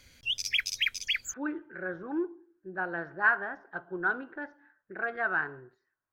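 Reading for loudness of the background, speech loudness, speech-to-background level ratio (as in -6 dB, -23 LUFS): -29.5 LUFS, -32.5 LUFS, -3.0 dB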